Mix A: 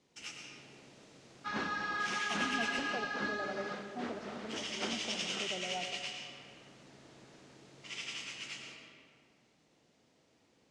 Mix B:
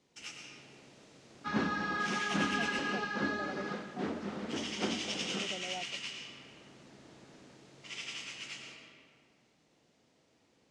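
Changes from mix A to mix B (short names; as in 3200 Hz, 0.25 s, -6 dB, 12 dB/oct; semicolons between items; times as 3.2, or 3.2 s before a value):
speech: send off; second sound: add bell 170 Hz +10 dB 3 oct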